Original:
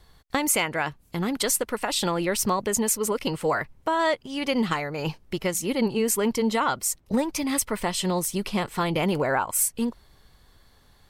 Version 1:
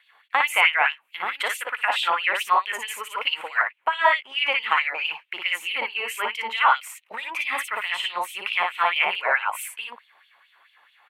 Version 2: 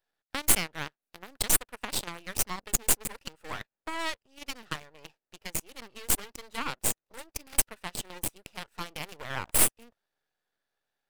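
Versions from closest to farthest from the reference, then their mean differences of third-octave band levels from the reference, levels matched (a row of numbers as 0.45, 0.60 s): 2, 1; 10.5, 14.0 dB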